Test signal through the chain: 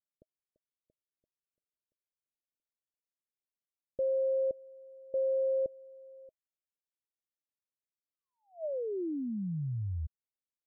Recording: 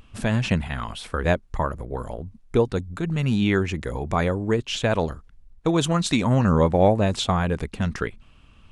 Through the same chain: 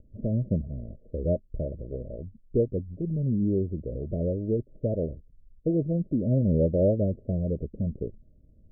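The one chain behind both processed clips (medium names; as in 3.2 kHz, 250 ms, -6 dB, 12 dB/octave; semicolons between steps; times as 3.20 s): Chebyshev low-pass 630 Hz, order 8; trim -3.5 dB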